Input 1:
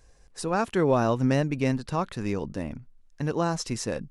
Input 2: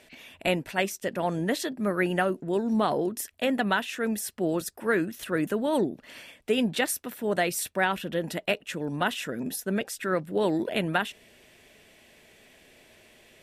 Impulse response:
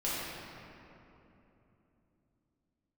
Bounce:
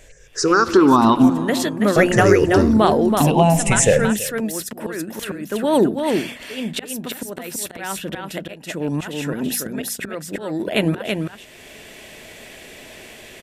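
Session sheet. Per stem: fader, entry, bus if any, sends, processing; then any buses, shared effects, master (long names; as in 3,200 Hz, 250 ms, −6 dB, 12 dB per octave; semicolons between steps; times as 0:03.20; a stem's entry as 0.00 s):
+3.0 dB, 0.00 s, muted 0:01.30–0:01.96, send −20.5 dB, echo send −18.5 dB, rippled gain that drifts along the octave scale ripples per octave 0.52, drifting −0.51 Hz, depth 23 dB; downward compressor, threshold −21 dBFS, peak gain reduction 8 dB
+2.5 dB, 0.00 s, no send, echo send −4.5 dB, volume swells 772 ms; de-essing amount 55%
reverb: on, RT60 3.1 s, pre-delay 5 ms
echo: single-tap delay 329 ms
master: parametric band 7,100 Hz +2.5 dB 0.26 octaves; mains-hum notches 60/120/180/240 Hz; automatic gain control gain up to 12 dB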